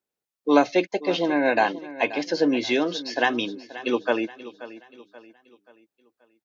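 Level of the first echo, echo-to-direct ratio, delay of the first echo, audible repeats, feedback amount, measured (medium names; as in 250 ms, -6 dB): -16.0 dB, -15.0 dB, 531 ms, 3, 41%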